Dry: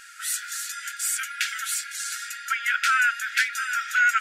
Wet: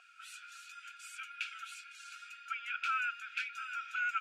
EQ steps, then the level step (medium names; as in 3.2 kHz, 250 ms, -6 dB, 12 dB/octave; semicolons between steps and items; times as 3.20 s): vowel filter a; peaking EQ 1.7 kHz -5.5 dB 0.25 oct; +3.0 dB